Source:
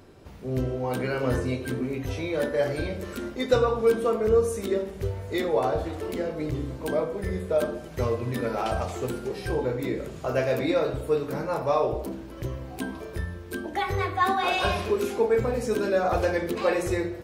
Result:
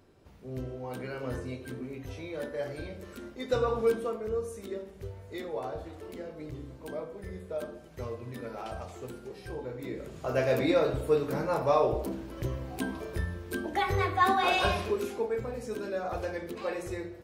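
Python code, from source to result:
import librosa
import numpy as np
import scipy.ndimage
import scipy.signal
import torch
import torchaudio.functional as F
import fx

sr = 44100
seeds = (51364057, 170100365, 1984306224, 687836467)

y = fx.gain(x, sr, db=fx.line((3.38, -10.0), (3.78, -3.0), (4.23, -11.5), (9.68, -11.5), (10.53, -1.0), (14.57, -1.0), (15.39, -10.0)))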